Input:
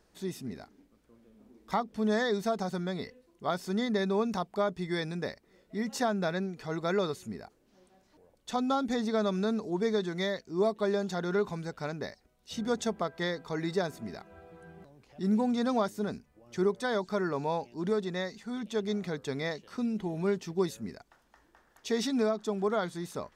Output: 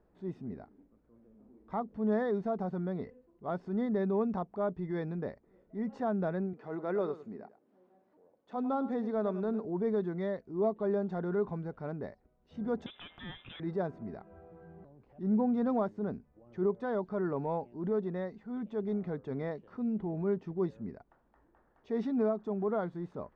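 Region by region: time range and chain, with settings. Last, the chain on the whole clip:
0:06.53–0:09.65: high-pass filter 230 Hz + single-tap delay 103 ms −14.5 dB
0:12.86–0:13.60: leveller curve on the samples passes 3 + downward compressor 5 to 1, threshold −29 dBFS + voice inversion scrambler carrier 3,700 Hz
whole clip: Bessel low-pass filter 860 Hz, order 2; transient designer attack −5 dB, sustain 0 dB

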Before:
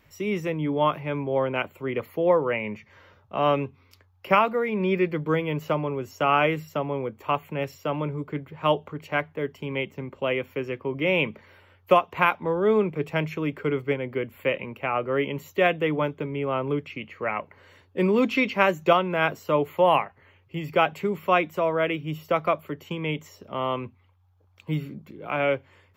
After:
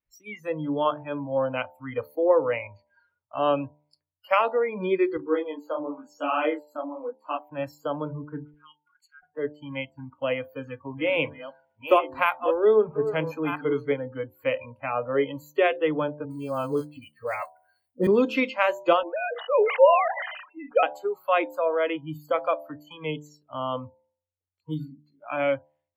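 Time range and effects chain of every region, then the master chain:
0:05.17–0:07.47: low shelf with overshoot 160 Hz −14 dB, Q 1.5 + micro pitch shift up and down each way 35 cents
0:08.54–0:09.23: high-pass filter 1,400 Hz 24 dB per octave + high-shelf EQ 3,200 Hz +3 dB + downward compressor 2.5 to 1, threshold −50 dBFS
0:10.19–0:13.92: delay that plays each chunk backwards 674 ms, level −9 dB + high-shelf EQ 12,000 Hz +5 dB + hum removal 377.8 Hz, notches 5
0:16.25–0:18.07: high-shelf EQ 9,200 Hz −10 dB + log-companded quantiser 6 bits + all-pass dispersion highs, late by 56 ms, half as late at 580 Hz
0:19.03–0:20.83: three sine waves on the formant tracks + level that may fall only so fast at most 45 dB per second
whole clip: noise reduction from a noise print of the clip's start 30 dB; hum removal 74.4 Hz, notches 13; dynamic equaliser 410 Hz, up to +6 dB, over −38 dBFS, Q 1.6; level −2.5 dB

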